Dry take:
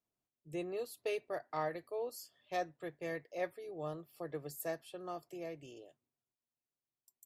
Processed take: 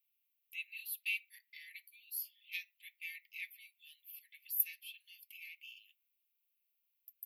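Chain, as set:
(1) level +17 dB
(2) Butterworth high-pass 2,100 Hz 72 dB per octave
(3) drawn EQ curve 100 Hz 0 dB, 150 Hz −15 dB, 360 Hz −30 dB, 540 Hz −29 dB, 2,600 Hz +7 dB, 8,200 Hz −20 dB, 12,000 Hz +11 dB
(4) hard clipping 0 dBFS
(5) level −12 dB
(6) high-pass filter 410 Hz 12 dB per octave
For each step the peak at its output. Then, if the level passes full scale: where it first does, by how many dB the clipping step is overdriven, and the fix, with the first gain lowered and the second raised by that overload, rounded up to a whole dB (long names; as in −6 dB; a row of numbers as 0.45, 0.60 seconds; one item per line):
−8.0, −14.5, −4.5, −4.5, −16.5, −16.5 dBFS
no step passes full scale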